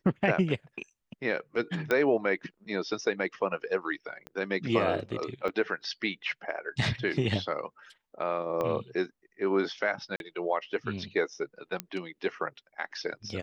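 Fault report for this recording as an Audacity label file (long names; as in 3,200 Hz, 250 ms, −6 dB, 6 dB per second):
1.910000	1.910000	click −14 dBFS
4.270000	4.270000	click −26 dBFS
5.480000	5.490000	drop-out 6.2 ms
8.610000	8.610000	click −19 dBFS
10.160000	10.200000	drop-out 41 ms
11.800000	11.800000	click −15 dBFS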